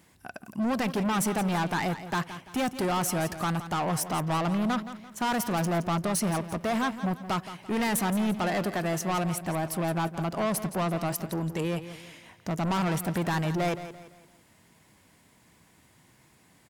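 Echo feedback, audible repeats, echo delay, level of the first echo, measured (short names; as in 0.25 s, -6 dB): 38%, 3, 0.17 s, -12.5 dB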